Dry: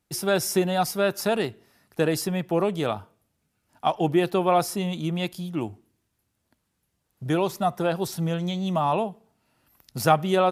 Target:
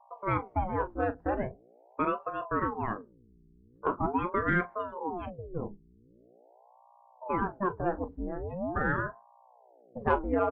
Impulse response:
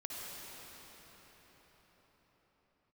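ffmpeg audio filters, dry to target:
-af "lowpass=f=2k:w=0.5412,lowpass=f=2k:w=1.3066,bandreject=f=60:t=h:w=6,bandreject=f=120:t=h:w=6,bandreject=f=180:t=h:w=6,bandreject=f=240:t=h:w=6,bandreject=f=300:t=h:w=6,bandreject=f=360:t=h:w=6,afftdn=nr=29:nf=-34,aeval=exprs='val(0)+0.00251*(sin(2*PI*60*n/s)+sin(2*PI*2*60*n/s)/2+sin(2*PI*3*60*n/s)/3+sin(2*PI*4*60*n/s)/4+sin(2*PI*5*60*n/s)/5)':c=same,acontrast=44,aecho=1:1:21|40:0.211|0.188,aeval=exprs='val(0)*sin(2*PI*490*n/s+490*0.8/0.43*sin(2*PI*0.43*n/s))':c=same,volume=-9dB"

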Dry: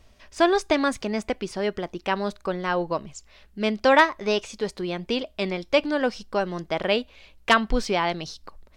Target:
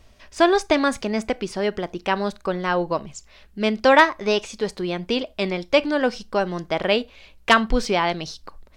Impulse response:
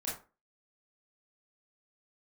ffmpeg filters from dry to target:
-filter_complex "[0:a]asplit=2[a][b];[1:a]atrim=start_sample=2205,atrim=end_sample=4410[c];[b][c]afir=irnorm=-1:irlink=0,volume=-21.5dB[d];[a][d]amix=inputs=2:normalize=0,volume=2.5dB"

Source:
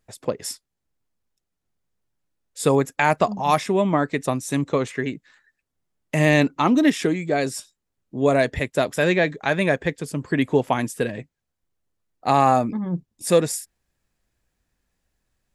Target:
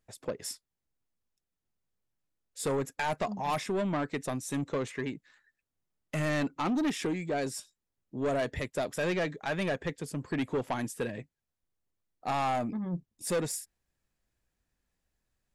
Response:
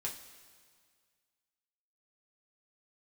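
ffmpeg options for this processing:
-af "asoftclip=type=tanh:threshold=-18dB,volume=-7dB"

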